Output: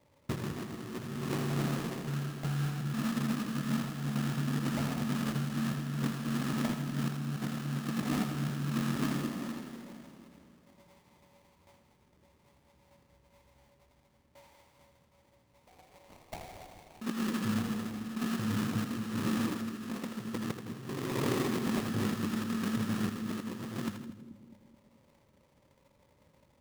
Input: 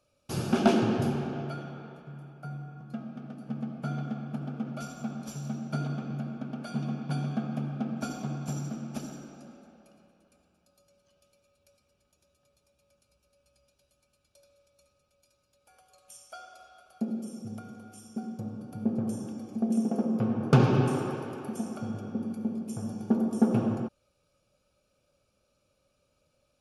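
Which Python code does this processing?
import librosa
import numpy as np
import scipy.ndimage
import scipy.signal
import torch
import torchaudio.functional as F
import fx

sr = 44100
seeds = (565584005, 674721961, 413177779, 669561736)

y = fx.tilt_shelf(x, sr, db=9.0, hz=800.0)
y = fx.hum_notches(y, sr, base_hz=50, count=5)
y = fx.over_compress(y, sr, threshold_db=-32.0, ratio=-1.0)
y = fx.notch_comb(y, sr, f0_hz=870.0)
y = fx.sample_hold(y, sr, seeds[0], rate_hz=1500.0, jitter_pct=20)
y = fx.echo_split(y, sr, split_hz=390.0, low_ms=215, high_ms=81, feedback_pct=52, wet_db=-8)
y = F.gain(torch.from_numpy(y), -3.0).numpy()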